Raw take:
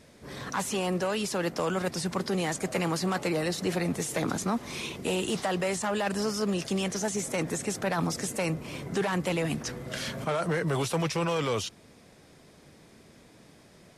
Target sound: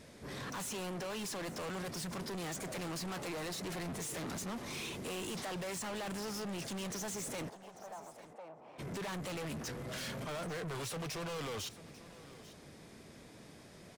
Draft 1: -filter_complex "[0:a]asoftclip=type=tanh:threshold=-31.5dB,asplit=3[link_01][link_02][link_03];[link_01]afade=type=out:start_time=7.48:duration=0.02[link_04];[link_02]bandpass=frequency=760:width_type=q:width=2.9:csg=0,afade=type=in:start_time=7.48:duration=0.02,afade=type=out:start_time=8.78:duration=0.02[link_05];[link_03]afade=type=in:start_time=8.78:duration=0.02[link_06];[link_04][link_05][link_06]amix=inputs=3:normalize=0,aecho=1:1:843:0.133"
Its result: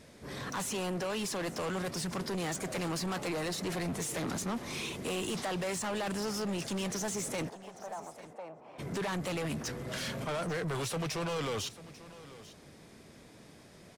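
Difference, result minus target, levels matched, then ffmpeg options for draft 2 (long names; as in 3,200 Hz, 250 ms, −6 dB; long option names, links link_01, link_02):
soft clipping: distortion −4 dB
-filter_complex "[0:a]asoftclip=type=tanh:threshold=-39dB,asplit=3[link_01][link_02][link_03];[link_01]afade=type=out:start_time=7.48:duration=0.02[link_04];[link_02]bandpass=frequency=760:width_type=q:width=2.9:csg=0,afade=type=in:start_time=7.48:duration=0.02,afade=type=out:start_time=8.78:duration=0.02[link_05];[link_03]afade=type=in:start_time=8.78:duration=0.02[link_06];[link_04][link_05][link_06]amix=inputs=3:normalize=0,aecho=1:1:843:0.133"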